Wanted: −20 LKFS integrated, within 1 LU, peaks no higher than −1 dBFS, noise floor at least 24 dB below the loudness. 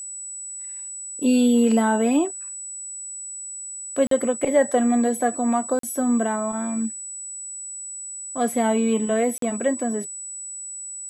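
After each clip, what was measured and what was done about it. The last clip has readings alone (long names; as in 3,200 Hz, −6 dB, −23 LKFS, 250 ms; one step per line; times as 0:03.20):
number of dropouts 3; longest dropout 43 ms; interfering tone 7,900 Hz; level of the tone −32 dBFS; integrated loudness −23.5 LKFS; sample peak −7.0 dBFS; target loudness −20.0 LKFS
→ repair the gap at 0:04.07/0:05.79/0:09.38, 43 ms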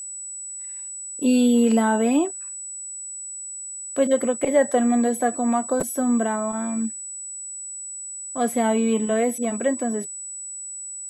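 number of dropouts 0; interfering tone 7,900 Hz; level of the tone −32 dBFS
→ notch filter 7,900 Hz, Q 30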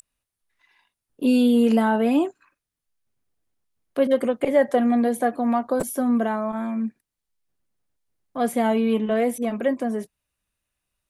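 interfering tone none found; integrated loudness −22.5 LKFS; sample peak −7.0 dBFS; target loudness −20.0 LKFS
→ level +2.5 dB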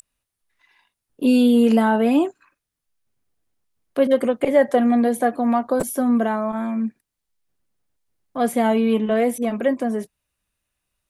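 integrated loudness −20.0 LKFS; sample peak −4.5 dBFS; background noise floor −82 dBFS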